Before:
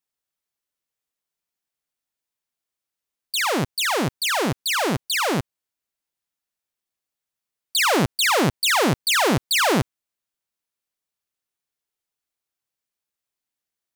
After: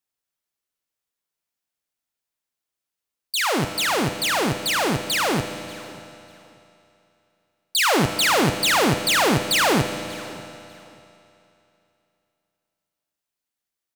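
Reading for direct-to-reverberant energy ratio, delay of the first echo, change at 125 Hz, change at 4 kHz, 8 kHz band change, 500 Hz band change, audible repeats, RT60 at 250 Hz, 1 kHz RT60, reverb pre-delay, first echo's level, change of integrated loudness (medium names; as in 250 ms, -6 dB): 7.5 dB, 591 ms, +0.5 dB, +0.5 dB, +0.5 dB, +0.5 dB, 1, 2.6 s, 3.0 s, 10 ms, -22.5 dB, +0.5 dB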